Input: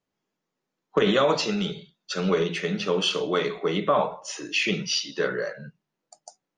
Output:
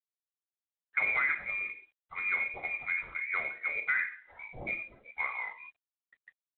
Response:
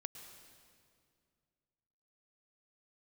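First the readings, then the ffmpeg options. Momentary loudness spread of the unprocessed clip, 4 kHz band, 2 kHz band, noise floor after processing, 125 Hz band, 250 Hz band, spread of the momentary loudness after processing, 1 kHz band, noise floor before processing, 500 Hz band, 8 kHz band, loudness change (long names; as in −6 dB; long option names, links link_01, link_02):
10 LU, below −30 dB, +2.0 dB, below −85 dBFS, −24.0 dB, −29.0 dB, 15 LU, −12.0 dB, −84 dBFS, −26.5 dB, below −40 dB, −7.0 dB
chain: -af "lowpass=frequency=2200:width_type=q:width=0.5098,lowpass=frequency=2200:width_type=q:width=0.6013,lowpass=frequency=2200:width_type=q:width=0.9,lowpass=frequency=2200:width_type=q:width=2.563,afreqshift=-2600,volume=-8.5dB" -ar 8000 -c:a adpcm_g726 -b:a 32k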